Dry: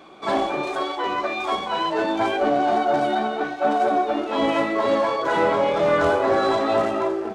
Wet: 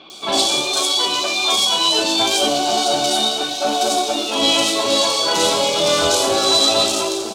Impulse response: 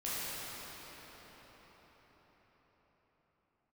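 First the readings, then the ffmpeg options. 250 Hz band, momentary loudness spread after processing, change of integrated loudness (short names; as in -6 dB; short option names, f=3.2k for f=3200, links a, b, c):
+0.5 dB, 5 LU, +6.0 dB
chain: -filter_complex "[0:a]acrossover=split=2900[a][b];[b]adelay=100[c];[a][c]amix=inputs=2:normalize=0,asplit=2[d][e];[1:a]atrim=start_sample=2205[f];[e][f]afir=irnorm=-1:irlink=0,volume=-19.5dB[g];[d][g]amix=inputs=2:normalize=0,aexciter=amount=7.9:drive=9.7:freq=2.9k"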